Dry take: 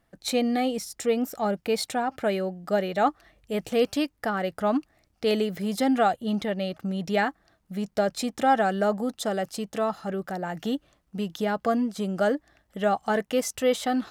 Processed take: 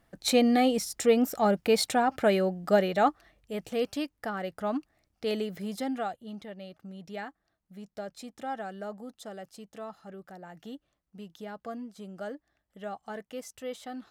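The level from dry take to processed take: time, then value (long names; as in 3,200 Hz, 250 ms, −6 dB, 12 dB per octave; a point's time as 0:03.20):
0:02.75 +2 dB
0:03.54 −6.5 dB
0:05.64 −6.5 dB
0:06.31 −14.5 dB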